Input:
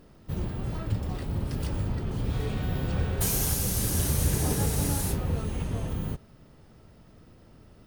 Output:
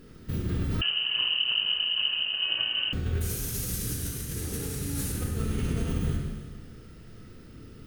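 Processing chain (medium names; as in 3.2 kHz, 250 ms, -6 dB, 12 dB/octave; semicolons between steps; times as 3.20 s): high-order bell 770 Hz -10.5 dB 1.1 oct; hum notches 50/100/150 Hz; compressor with a negative ratio -33 dBFS, ratio -1; Schroeder reverb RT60 1.5 s, combs from 25 ms, DRR 0 dB; 0.81–2.93 s: frequency inversion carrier 3 kHz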